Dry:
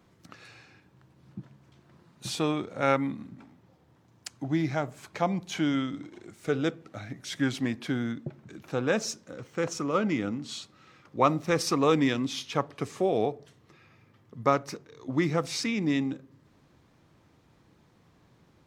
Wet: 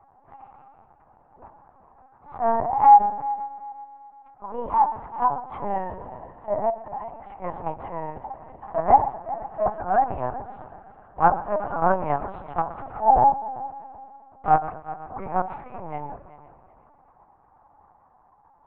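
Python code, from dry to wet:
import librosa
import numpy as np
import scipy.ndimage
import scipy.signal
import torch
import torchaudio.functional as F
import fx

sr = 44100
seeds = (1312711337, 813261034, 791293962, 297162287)

p1 = fx.pitch_glide(x, sr, semitones=8.5, runs='ending unshifted')
p2 = scipy.signal.sosfilt(scipy.signal.butter(4, 1200.0, 'lowpass', fs=sr, output='sos'), p1)
p3 = fx.rider(p2, sr, range_db=4, speed_s=2.0)
p4 = p2 + F.gain(torch.from_numpy(p3), 1.5).numpy()
p5 = fx.transient(p4, sr, attack_db=-11, sustain_db=6)
p6 = fx.highpass_res(p5, sr, hz=810.0, q=4.9)
p7 = fx.echo_heads(p6, sr, ms=126, heads='first and third', feedback_pct=49, wet_db=-17)
y = fx.lpc_vocoder(p7, sr, seeds[0], excitation='pitch_kept', order=8)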